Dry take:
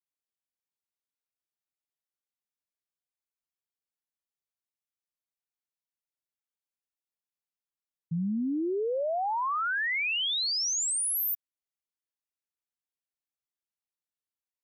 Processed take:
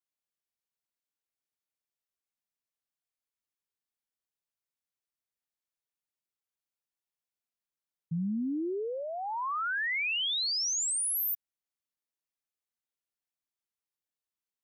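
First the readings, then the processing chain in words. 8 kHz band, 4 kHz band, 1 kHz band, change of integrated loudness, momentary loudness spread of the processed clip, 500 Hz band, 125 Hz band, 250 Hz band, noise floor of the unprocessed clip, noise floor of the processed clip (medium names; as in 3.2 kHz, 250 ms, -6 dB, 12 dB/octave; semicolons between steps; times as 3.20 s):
-1.5 dB, -1.5 dB, -4.0 dB, -2.0 dB, 9 LU, -5.5 dB, -1.5 dB, -2.5 dB, under -85 dBFS, under -85 dBFS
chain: dynamic bell 640 Hz, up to -6 dB, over -45 dBFS, Q 1.3; trim -1.5 dB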